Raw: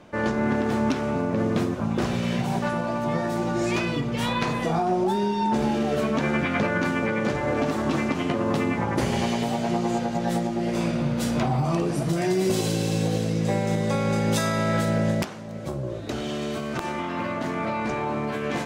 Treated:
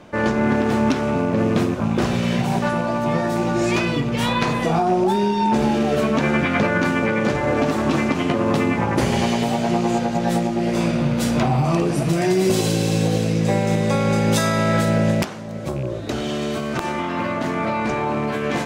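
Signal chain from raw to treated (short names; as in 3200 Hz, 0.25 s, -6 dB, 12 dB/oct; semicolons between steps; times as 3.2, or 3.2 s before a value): rattling part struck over -28 dBFS, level -34 dBFS; gain +5 dB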